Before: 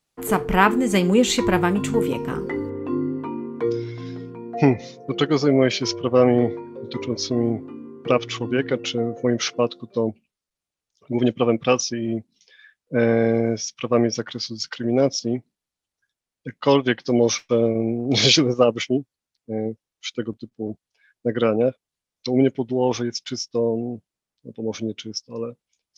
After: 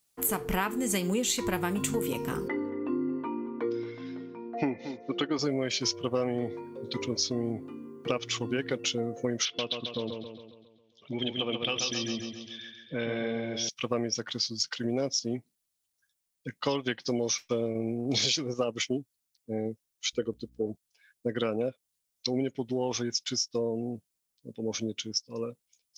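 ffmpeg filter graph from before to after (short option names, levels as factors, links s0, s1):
-filter_complex "[0:a]asettb=1/sr,asplit=3[s0][s1][s2];[s0]atrim=end=2.484[s3];[s1]atrim=start=2.48:end=5.39,asetpts=PTS-STARTPTS,afade=t=in:d=0.004:c=qsin,afade=t=out:st=2.906:d=0.004:c=qsin,highpass=170,lowpass=2500,aecho=1:1:3.4:0.33,atrim=end_sample=128331,aecho=1:1:226:0.141,atrim=end_sample=128331[s4];[s2]atrim=start=5.386[s5];[s3][s4]acrossfade=d=0.004:c1=hsin:c2=qsin[s6];[s6][s5]acrossfade=d=0.004:c1=qsin:c2=hsin,asettb=1/sr,asplit=3[s7][s8][s9];[s7]atrim=end=9.454[s10];[s8]atrim=start=9.45:end=13.69,asetpts=PTS-STARTPTS,afade=t=in:d=0.004:c=qsin,afade=t=out:st=4.236:d=0.004:c=qsin,lowpass=f=3300:t=q:w=6.4,acompressor=threshold=0.0398:ratio=2:attack=3.2:release=140:knee=1:detection=peak,aecho=1:1:136|272|408|544|680|816|952:0.531|0.281|0.149|0.079|0.0419|0.0222|0.0118,atrim=end_sample=186984[s11];[s9]atrim=start=13.686[s12];[s10][s11]acrossfade=d=0.004:c1=hsin:c2=qsin[s13];[s13][s12]acrossfade=d=0.004:c1=qsin:c2=hsin,asettb=1/sr,asplit=3[s14][s15][s16];[s14]atrim=end=20.134[s17];[s15]atrim=start=20.13:end=20.66,asetpts=PTS-STARTPTS,afade=t=in:d=0.004:c=qsin,afade=t=out:st=0.526:d=0.004:c=qsin,equalizer=f=460:t=o:w=0.47:g=11,aeval=exprs='val(0)+0.002*(sin(2*PI*60*n/s)+sin(2*PI*2*60*n/s)/2+sin(2*PI*3*60*n/s)/3+sin(2*PI*4*60*n/s)/4+sin(2*PI*5*60*n/s)/5)':c=same[s18];[s16]atrim=start=20.656[s19];[s17][s18]acrossfade=d=0.004:c1=hsin:c2=qsin[s20];[s20][s19]acrossfade=d=0.004:c1=qsin:c2=hsin,aemphasis=mode=production:type=75kf,acompressor=threshold=0.1:ratio=6,volume=0.531"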